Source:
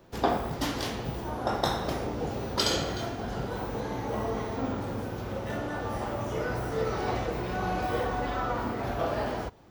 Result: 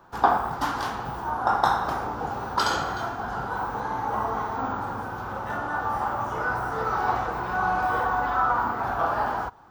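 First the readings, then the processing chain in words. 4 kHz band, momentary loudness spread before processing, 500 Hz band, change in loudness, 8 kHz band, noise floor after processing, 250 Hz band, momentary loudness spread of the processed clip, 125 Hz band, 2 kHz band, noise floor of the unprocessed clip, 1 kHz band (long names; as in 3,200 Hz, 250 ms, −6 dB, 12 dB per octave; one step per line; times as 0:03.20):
−3.0 dB, 6 LU, −1.0 dB, +4.5 dB, −3.0 dB, −34 dBFS, −3.0 dB, 8 LU, −3.0 dB, +8.0 dB, −36 dBFS, +9.5 dB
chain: flat-topped bell 1,100 Hz +14 dB 1.3 octaves
level −3 dB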